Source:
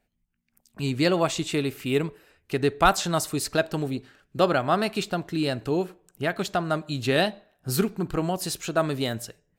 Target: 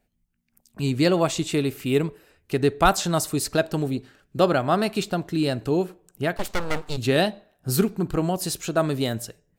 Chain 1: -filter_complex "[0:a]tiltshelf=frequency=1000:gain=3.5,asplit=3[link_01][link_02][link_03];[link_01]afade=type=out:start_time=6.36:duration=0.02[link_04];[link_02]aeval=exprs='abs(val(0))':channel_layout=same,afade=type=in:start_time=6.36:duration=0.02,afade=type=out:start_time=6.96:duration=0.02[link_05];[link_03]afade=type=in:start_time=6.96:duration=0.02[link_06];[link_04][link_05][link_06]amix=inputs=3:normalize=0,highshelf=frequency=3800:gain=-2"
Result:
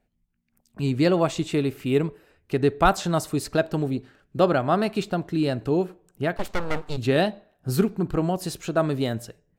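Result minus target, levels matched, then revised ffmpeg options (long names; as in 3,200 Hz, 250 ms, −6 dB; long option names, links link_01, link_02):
8,000 Hz band −7.0 dB
-filter_complex "[0:a]tiltshelf=frequency=1000:gain=3.5,asplit=3[link_01][link_02][link_03];[link_01]afade=type=out:start_time=6.36:duration=0.02[link_04];[link_02]aeval=exprs='abs(val(0))':channel_layout=same,afade=type=in:start_time=6.36:duration=0.02,afade=type=out:start_time=6.96:duration=0.02[link_05];[link_03]afade=type=in:start_time=6.96:duration=0.02[link_06];[link_04][link_05][link_06]amix=inputs=3:normalize=0,highshelf=frequency=3800:gain=7"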